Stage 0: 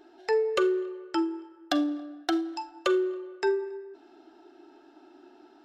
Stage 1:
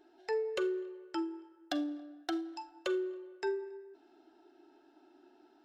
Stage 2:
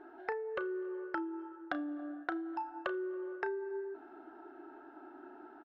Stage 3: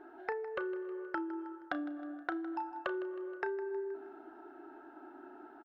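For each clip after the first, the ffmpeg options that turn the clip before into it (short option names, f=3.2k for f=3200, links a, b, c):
-af "bandreject=f=1.2k:w=12,volume=-8.5dB"
-filter_complex "[0:a]lowpass=f=1.4k:t=q:w=2.6,acompressor=threshold=-43dB:ratio=16,asplit=2[a][b];[b]adelay=33,volume=-14dB[c];[a][c]amix=inputs=2:normalize=0,volume=8.5dB"
-af "aecho=1:1:158|316|474|632:0.158|0.0792|0.0396|0.0198"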